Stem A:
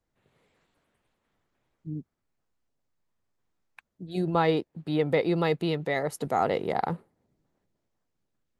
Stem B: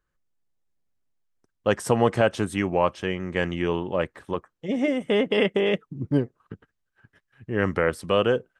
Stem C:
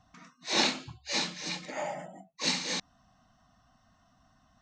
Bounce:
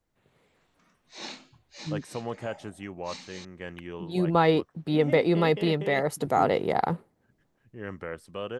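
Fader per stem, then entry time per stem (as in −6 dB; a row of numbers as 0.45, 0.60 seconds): +2.5, −14.0, −13.5 decibels; 0.00, 0.25, 0.65 seconds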